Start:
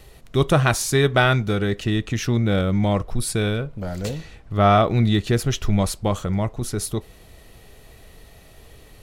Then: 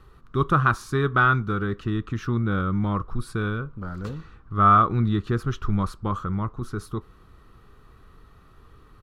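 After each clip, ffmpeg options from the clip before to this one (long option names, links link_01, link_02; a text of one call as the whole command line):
ffmpeg -i in.wav -af "firequalizer=gain_entry='entry(360,0);entry(640,-12);entry(1200,12);entry(2000,-9);entry(3700,-9);entry(7200,-16)':delay=0.05:min_phase=1,volume=-4dB" out.wav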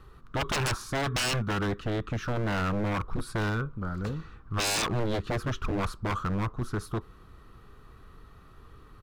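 ffmpeg -i in.wav -af "aeval=exprs='0.0708*(abs(mod(val(0)/0.0708+3,4)-2)-1)':channel_layout=same" out.wav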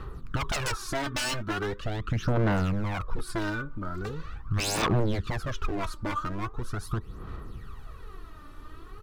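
ffmpeg -i in.wav -af "acompressor=threshold=-34dB:ratio=6,aphaser=in_gain=1:out_gain=1:delay=3.4:decay=0.64:speed=0.41:type=sinusoidal,volume=4dB" out.wav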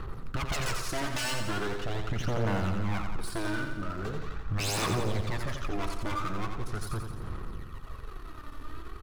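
ffmpeg -i in.wav -filter_complex "[0:a]aeval=exprs='if(lt(val(0),0),0.251*val(0),val(0))':channel_layout=same,aeval=exprs='(tanh(35.5*val(0)+0.55)-tanh(0.55))/35.5':channel_layout=same,asplit=2[link_01][link_02];[link_02]aecho=0:1:87|174|261|348|435|522|609|696:0.501|0.296|0.174|0.103|0.0607|0.0358|0.0211|0.0125[link_03];[link_01][link_03]amix=inputs=2:normalize=0,volume=8.5dB" out.wav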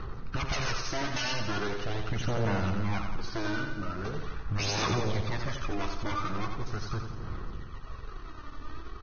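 ffmpeg -i in.wav -ar 16000 -c:a libvorbis -b:a 16k out.ogg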